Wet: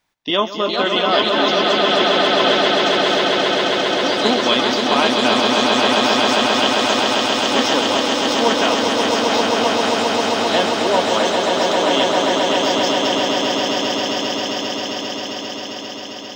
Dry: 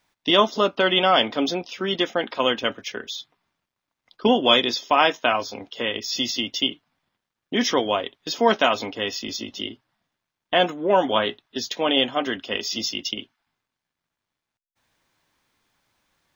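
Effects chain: echoes that change speed 0.457 s, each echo +3 st, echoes 3, each echo -6 dB; swelling echo 0.133 s, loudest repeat 8, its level -5 dB; gain -1 dB

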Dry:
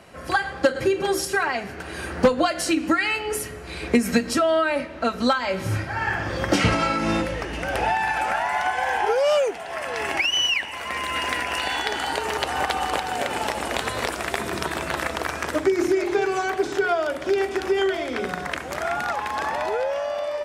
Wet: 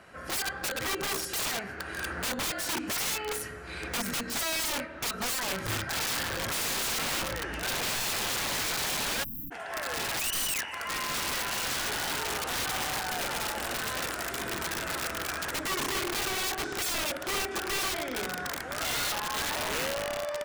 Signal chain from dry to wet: bell 1500 Hz +8.5 dB 0.69 oct; wrapped overs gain 19 dB; spectral delete 9.23–9.52, 310–12000 Hz; gain -7 dB

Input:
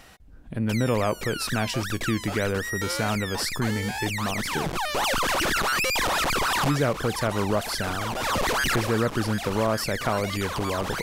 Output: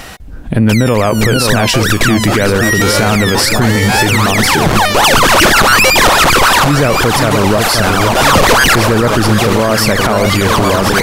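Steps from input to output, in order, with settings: on a send: echo with dull and thin repeats by turns 0.526 s, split 1100 Hz, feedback 68%, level -7.5 dB; on the sum: maximiser +21.5 dB; gain -1 dB

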